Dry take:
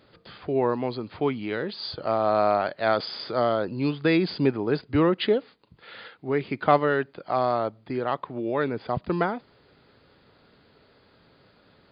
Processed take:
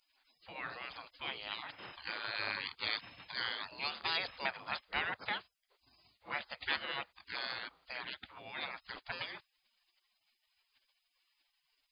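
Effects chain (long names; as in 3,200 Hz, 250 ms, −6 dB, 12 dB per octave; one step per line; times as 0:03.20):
gate on every frequency bin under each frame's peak −25 dB weak
level +4.5 dB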